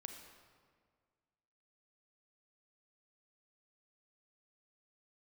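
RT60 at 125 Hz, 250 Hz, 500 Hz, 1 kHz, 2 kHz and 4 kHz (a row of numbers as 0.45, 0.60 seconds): 2.1, 2.0, 1.9, 1.8, 1.5, 1.2 seconds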